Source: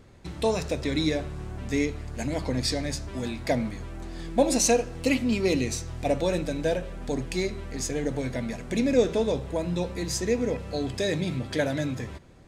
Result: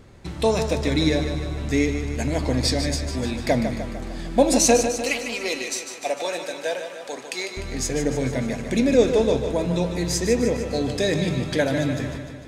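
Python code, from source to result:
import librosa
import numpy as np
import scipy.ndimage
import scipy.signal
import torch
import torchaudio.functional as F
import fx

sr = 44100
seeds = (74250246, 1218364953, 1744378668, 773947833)

y = fx.highpass(x, sr, hz=680.0, slope=12, at=(4.88, 7.57))
y = fx.echo_feedback(y, sr, ms=150, feedback_pct=59, wet_db=-8.5)
y = y * librosa.db_to_amplitude(4.5)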